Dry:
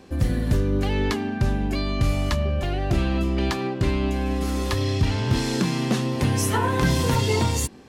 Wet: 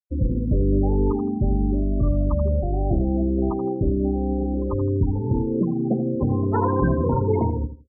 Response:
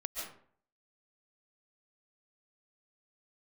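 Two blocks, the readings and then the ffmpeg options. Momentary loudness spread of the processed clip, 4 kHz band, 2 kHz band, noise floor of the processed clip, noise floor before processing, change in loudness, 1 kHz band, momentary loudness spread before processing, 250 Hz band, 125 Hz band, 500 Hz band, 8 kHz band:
3 LU, under -40 dB, under -10 dB, -28 dBFS, -31 dBFS, +1.0 dB, -1.0 dB, 4 LU, +2.5 dB, 0.0 dB, +2.5 dB, under -40 dB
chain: -af "lowpass=1100,afftfilt=real='re*gte(hypot(re,im),0.1)':imag='im*gte(hypot(re,im),0.1)':win_size=1024:overlap=0.75,equalizer=f=120:t=o:w=1.5:g=-5,aecho=1:1:82|164|246:0.299|0.0657|0.0144,volume=1.41"

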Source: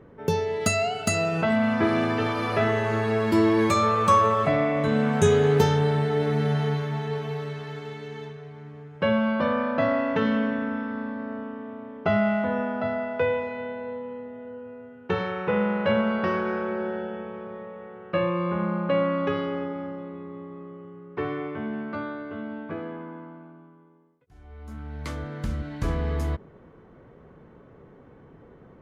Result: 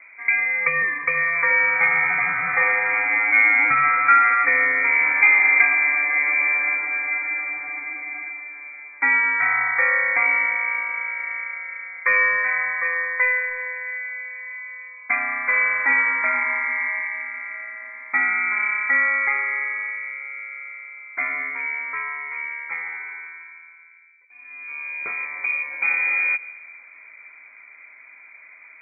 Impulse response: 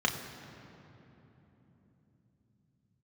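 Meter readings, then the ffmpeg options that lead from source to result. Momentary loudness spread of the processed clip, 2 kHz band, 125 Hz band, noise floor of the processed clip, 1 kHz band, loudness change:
17 LU, +16.5 dB, under -20 dB, -47 dBFS, +2.5 dB, +6.5 dB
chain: -filter_complex "[0:a]asplit=2[s0][s1];[1:a]atrim=start_sample=2205,adelay=144[s2];[s1][s2]afir=irnorm=-1:irlink=0,volume=0.0422[s3];[s0][s3]amix=inputs=2:normalize=0,lowpass=f=2100:t=q:w=0.5098,lowpass=f=2100:t=q:w=0.6013,lowpass=f=2100:t=q:w=0.9,lowpass=f=2100:t=q:w=2.563,afreqshift=-2500,bandreject=f=50:t=h:w=6,bandreject=f=100:t=h:w=6,bandreject=f=150:t=h:w=6,volume=1.58"

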